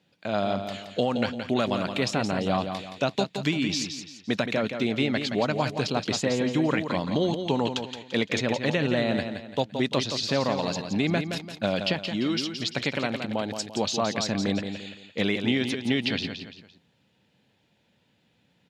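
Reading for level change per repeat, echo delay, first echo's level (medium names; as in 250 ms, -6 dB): -8.5 dB, 171 ms, -7.5 dB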